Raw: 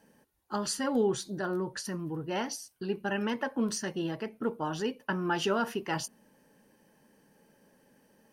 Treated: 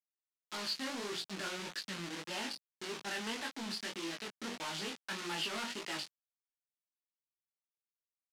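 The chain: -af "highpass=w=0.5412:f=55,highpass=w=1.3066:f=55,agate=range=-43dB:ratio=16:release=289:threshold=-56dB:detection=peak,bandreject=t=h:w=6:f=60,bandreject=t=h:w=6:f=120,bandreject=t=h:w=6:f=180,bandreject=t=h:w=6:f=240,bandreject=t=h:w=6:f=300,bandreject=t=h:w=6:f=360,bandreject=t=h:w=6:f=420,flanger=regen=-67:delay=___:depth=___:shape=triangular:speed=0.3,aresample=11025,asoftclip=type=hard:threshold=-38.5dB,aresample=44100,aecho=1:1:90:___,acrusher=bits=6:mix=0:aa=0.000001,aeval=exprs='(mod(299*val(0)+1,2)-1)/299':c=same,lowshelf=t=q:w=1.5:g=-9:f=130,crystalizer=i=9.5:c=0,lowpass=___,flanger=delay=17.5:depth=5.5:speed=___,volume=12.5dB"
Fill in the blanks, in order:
2.6, 1.1, 0.1, 4.3k, 1.7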